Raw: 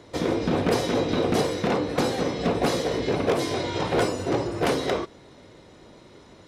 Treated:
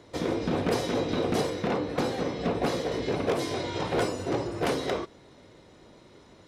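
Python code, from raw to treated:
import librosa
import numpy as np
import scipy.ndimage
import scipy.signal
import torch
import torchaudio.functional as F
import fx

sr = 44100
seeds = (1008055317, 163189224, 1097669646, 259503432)

y = fx.peak_eq(x, sr, hz=10000.0, db=-5.0, octaves=1.9, at=(1.5, 2.92))
y = y * librosa.db_to_amplitude(-4.0)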